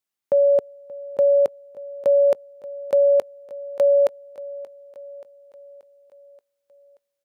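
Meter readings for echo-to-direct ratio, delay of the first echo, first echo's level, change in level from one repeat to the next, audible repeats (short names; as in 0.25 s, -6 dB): -17.5 dB, 0.58 s, -19.5 dB, -4.5 dB, 4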